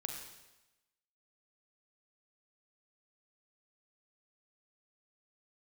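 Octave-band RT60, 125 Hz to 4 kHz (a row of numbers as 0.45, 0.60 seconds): 1.0, 0.95, 1.0, 1.0, 1.0, 1.0 seconds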